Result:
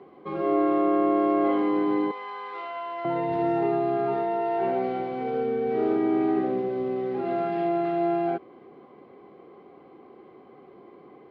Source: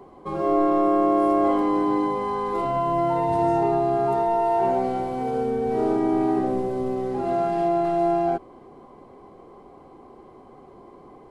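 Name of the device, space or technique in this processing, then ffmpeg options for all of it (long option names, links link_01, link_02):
kitchen radio: -filter_complex "[0:a]asettb=1/sr,asplit=3[link_01][link_02][link_03];[link_01]atrim=end=2.114[link_04];[link_02]atrim=start=2.11:end=3.05,asetpts=PTS-STARTPTS,afade=type=in:duration=0.004:curve=qsin,afade=type=out:start_time=0.936:duration=0.004:curve=qsin,highpass=950[link_05];[link_03]atrim=start=3.046[link_06];[link_04][link_05]acrossfade=duration=0.004:curve1=hsin:curve2=qsin[link_07];[link_07][link_06]acrossfade=duration=0.004:curve1=qsin:curve2=hsin,highpass=180,equalizer=frequency=250:width_type=q:width=4:gain=-3,equalizer=frequency=620:width_type=q:width=4:gain=-5,equalizer=frequency=930:width_type=q:width=4:gain=-10,equalizer=frequency=2200:width_type=q:width=4:gain=3,lowpass=frequency=3800:width=0.5412,lowpass=frequency=3800:width=1.3066"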